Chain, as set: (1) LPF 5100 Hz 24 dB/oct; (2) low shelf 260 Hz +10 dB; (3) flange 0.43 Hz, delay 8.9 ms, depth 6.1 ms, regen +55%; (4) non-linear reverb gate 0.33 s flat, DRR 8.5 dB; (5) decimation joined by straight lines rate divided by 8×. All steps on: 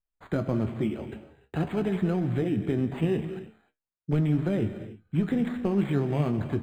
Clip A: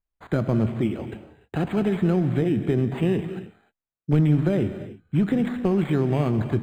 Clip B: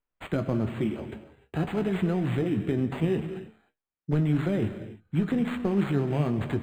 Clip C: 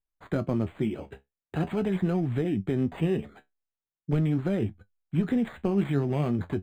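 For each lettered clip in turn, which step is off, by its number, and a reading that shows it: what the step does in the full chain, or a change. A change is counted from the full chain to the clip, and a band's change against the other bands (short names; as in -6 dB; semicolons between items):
3, loudness change +4.5 LU; 1, 2 kHz band +2.0 dB; 4, momentary loudness spread change -4 LU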